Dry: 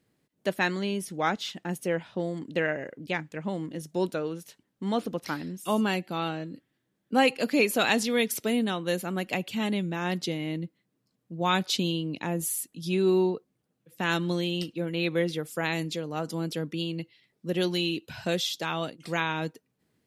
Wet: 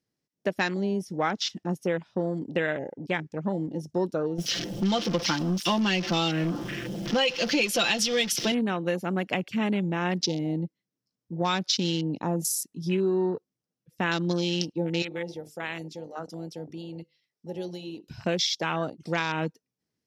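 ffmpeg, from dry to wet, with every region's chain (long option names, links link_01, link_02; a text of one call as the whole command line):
ffmpeg -i in.wav -filter_complex "[0:a]asettb=1/sr,asplit=3[link_01][link_02][link_03];[link_01]atrim=end=4.384[link_04];[link_02]atrim=start=4.38:end=8.52,asetpts=PTS-STARTPTS,afade=type=in:duration=0.004:curve=qsin,afade=type=out:start_time=4.136:duration=0.004:curve=qsin,aeval=exprs='val(0)+0.5*0.0251*sgn(val(0))':channel_layout=same,equalizer=frequency=3100:width_type=o:width=0.41:gain=10,aecho=1:1:5.8:0.68,atrim=end_sample=182574[link_05];[link_03]atrim=start=8.516[link_06];[link_04][link_05]acrossfade=duration=0.004:curve1=hsin:curve2=qsin[link_07];[link_07][link_06]acrossfade=duration=0.004:curve1=qsin:curve2=hsin,asettb=1/sr,asplit=3[link_08][link_09][link_10];[link_08]atrim=end=15.024[link_11];[link_09]atrim=start=15.02:end=18.11,asetpts=PTS-STARTPTS,afade=type=in:duration=0.004:curve=qsin,afade=type=out:start_time=3.086:duration=0.004:curve=qsin,lowshelf=frequency=500:gain=-8.5,bandreject=frequency=50:width_type=h:width=6,bandreject=frequency=100:width_type=h:width=6,bandreject=frequency=150:width_type=h:width=6,bandreject=frequency=200:width_type=h:width=6,bandreject=frequency=250:width_type=h:width=6,bandreject=frequency=300:width_type=h:width=6,bandreject=frequency=350:width_type=h:width=6,bandreject=frequency=400:width_type=h:width=6,bandreject=frequency=450:width_type=h:width=6,bandreject=frequency=500:width_type=h:width=6,acompressor=threshold=-41dB:ratio=1.5:attack=3.2:release=140:knee=1:detection=peak[link_12];[link_10]atrim=start=18.106[link_13];[link_11][link_12]acrossfade=duration=0.004:curve1=hsin:curve2=qsin[link_14];[link_14][link_13]acrossfade=duration=0.004:curve1=qsin:curve2=hsin,afwtdn=0.0141,equalizer=frequency=5500:width_type=o:width=0.49:gain=12.5,acompressor=threshold=-26dB:ratio=6,volume=4dB" out.wav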